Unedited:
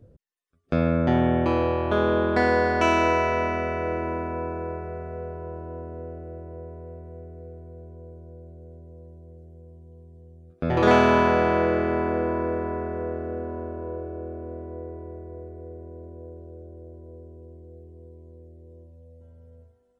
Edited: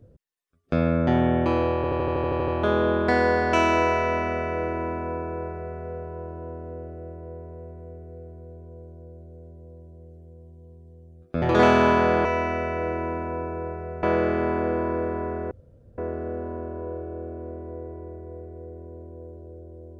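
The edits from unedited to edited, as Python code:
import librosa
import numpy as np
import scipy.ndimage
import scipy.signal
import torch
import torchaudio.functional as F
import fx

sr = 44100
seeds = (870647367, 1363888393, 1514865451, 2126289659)

y = fx.edit(x, sr, fx.stutter(start_s=1.76, slice_s=0.08, count=10),
    fx.duplicate(start_s=3.29, length_s=1.78, to_s=11.53),
    fx.insert_room_tone(at_s=13.01, length_s=0.47), tone=tone)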